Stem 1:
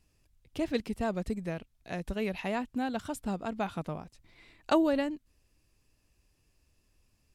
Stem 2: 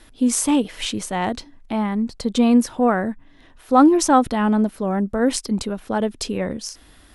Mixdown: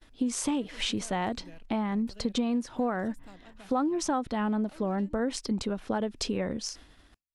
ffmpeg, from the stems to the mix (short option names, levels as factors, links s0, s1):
-filter_complex "[0:a]asoftclip=type=tanh:threshold=0.0376,acrossover=split=260|1800[s0][s1][s2];[s0]acompressor=threshold=0.00355:ratio=4[s3];[s1]acompressor=threshold=0.00501:ratio=4[s4];[s2]acompressor=threshold=0.00316:ratio=4[s5];[s3][s4][s5]amix=inputs=3:normalize=0,acrossover=split=410[s6][s7];[s6]aeval=exprs='val(0)*(1-0.5/2+0.5/2*cos(2*PI*4.1*n/s))':c=same[s8];[s7]aeval=exprs='val(0)*(1-0.5/2-0.5/2*cos(2*PI*4.1*n/s))':c=same[s9];[s8][s9]amix=inputs=2:normalize=0,volume=0.631[s10];[1:a]lowpass=6900,volume=0.794[s11];[s10][s11]amix=inputs=2:normalize=0,agate=range=0.0224:threshold=0.00562:ratio=3:detection=peak,acompressor=threshold=0.0501:ratio=6"